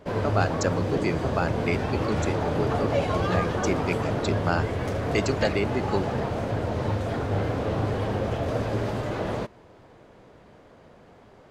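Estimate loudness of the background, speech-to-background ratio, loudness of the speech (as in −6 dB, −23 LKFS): −27.5 LKFS, −2.5 dB, −30.0 LKFS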